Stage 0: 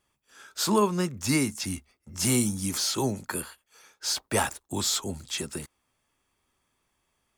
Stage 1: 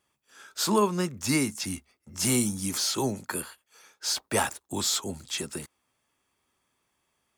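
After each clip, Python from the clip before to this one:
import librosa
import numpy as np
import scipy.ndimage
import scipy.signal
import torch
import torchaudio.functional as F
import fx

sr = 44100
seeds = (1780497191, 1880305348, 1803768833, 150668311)

y = fx.highpass(x, sr, hz=110.0, slope=6)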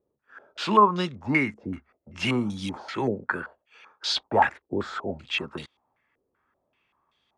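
y = fx.filter_held_lowpass(x, sr, hz=5.2, low_hz=470.0, high_hz=3600.0)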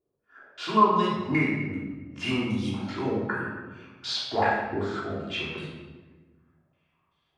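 y = fx.room_shoebox(x, sr, seeds[0], volume_m3=860.0, walls='mixed', distance_m=3.2)
y = F.gain(torch.from_numpy(y), -8.5).numpy()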